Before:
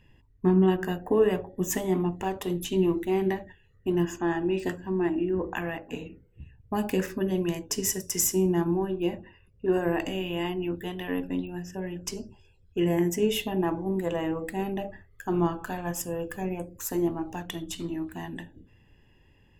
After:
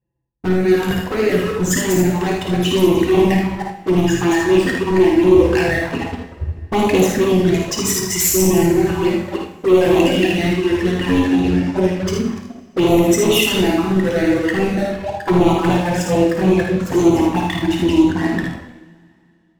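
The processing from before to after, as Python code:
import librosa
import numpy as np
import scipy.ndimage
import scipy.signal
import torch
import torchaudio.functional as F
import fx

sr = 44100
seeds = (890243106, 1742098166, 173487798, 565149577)

y = fx.reverse_delay_fb(x, sr, ms=151, feedback_pct=41, wet_db=-3.5)
y = scipy.signal.sosfilt(scipy.signal.butter(4, 42.0, 'highpass', fs=sr, output='sos'), y)
y = fx.hum_notches(y, sr, base_hz=50, count=7)
y = fx.dereverb_blind(y, sr, rt60_s=1.9)
y = fx.env_lowpass(y, sr, base_hz=830.0, full_db=-22.5)
y = fx.high_shelf(y, sr, hz=12000.0, db=6.0)
y = fx.leveller(y, sr, passes=5)
y = fx.rider(y, sr, range_db=3, speed_s=2.0)
y = fx.env_flanger(y, sr, rest_ms=5.9, full_db=-13.0)
y = fx.room_early_taps(y, sr, ms=(54, 78), db=(-6.0, -6.0))
y = fx.rev_double_slope(y, sr, seeds[0], early_s=0.71, late_s=2.6, knee_db=-19, drr_db=3.5)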